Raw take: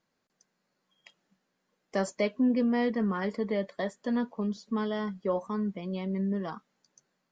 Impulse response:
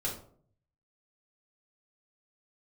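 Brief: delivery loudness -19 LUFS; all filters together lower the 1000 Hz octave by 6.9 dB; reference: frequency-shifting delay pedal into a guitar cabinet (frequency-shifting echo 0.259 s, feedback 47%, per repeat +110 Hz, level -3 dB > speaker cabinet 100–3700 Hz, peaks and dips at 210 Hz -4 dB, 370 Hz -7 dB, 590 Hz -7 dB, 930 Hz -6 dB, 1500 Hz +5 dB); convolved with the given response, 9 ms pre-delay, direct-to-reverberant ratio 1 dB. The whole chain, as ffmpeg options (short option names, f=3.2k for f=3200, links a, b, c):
-filter_complex "[0:a]equalizer=f=1k:t=o:g=-5.5,asplit=2[a][b];[1:a]atrim=start_sample=2205,adelay=9[c];[b][c]afir=irnorm=-1:irlink=0,volume=-5dB[d];[a][d]amix=inputs=2:normalize=0,asplit=7[e][f][g][h][i][j][k];[f]adelay=259,afreqshift=110,volume=-3dB[l];[g]adelay=518,afreqshift=220,volume=-9.6dB[m];[h]adelay=777,afreqshift=330,volume=-16.1dB[n];[i]adelay=1036,afreqshift=440,volume=-22.7dB[o];[j]adelay=1295,afreqshift=550,volume=-29.2dB[p];[k]adelay=1554,afreqshift=660,volume=-35.8dB[q];[e][l][m][n][o][p][q]amix=inputs=7:normalize=0,highpass=100,equalizer=f=210:t=q:w=4:g=-4,equalizer=f=370:t=q:w=4:g=-7,equalizer=f=590:t=q:w=4:g=-7,equalizer=f=930:t=q:w=4:g=-6,equalizer=f=1.5k:t=q:w=4:g=5,lowpass=f=3.7k:w=0.5412,lowpass=f=3.7k:w=1.3066,volume=10.5dB"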